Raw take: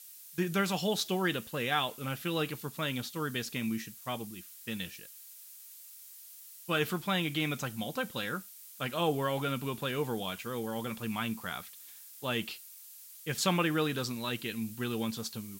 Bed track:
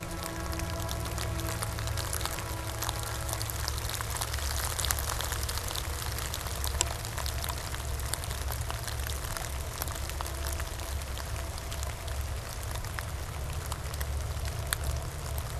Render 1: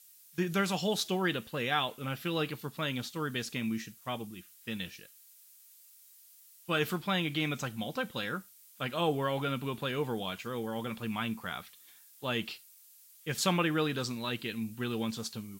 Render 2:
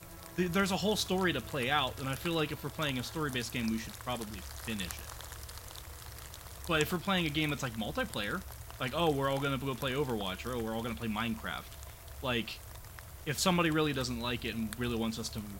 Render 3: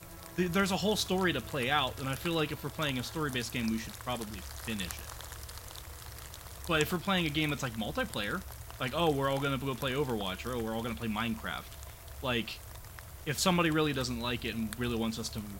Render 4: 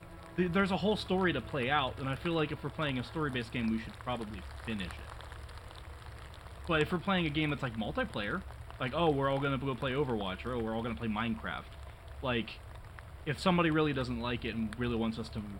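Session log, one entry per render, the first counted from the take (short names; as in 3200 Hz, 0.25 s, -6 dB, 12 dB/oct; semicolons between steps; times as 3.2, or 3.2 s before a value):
noise print and reduce 7 dB
add bed track -13 dB
gain +1 dB
running mean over 7 samples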